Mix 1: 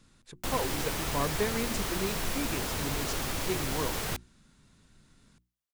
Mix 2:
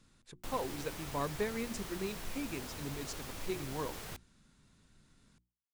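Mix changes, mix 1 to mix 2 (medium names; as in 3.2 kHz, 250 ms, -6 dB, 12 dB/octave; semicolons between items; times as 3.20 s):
speech -4.5 dB; background -12.0 dB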